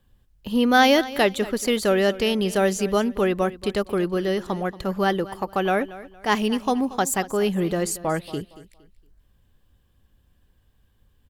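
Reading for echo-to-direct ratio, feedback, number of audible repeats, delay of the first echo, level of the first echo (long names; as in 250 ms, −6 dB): −16.5 dB, 30%, 2, 231 ms, −17.0 dB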